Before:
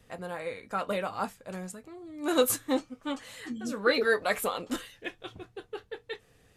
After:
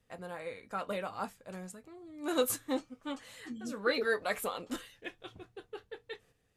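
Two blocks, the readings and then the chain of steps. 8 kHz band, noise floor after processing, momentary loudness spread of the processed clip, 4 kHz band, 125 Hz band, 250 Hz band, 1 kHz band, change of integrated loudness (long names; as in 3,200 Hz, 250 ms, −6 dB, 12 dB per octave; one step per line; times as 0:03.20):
−5.5 dB, −73 dBFS, 17 LU, −5.5 dB, −5.5 dB, −5.5 dB, −5.5 dB, −5.5 dB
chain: noise gate −56 dBFS, range −8 dB
level −5.5 dB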